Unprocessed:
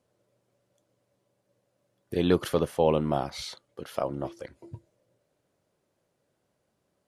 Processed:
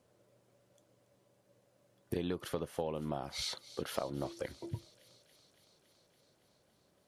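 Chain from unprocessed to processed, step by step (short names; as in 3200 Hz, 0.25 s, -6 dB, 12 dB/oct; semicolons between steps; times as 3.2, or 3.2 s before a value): compressor 16:1, threshold -36 dBFS, peak gain reduction 20 dB; thin delay 0.281 s, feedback 76%, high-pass 2800 Hz, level -15 dB; gain +3.5 dB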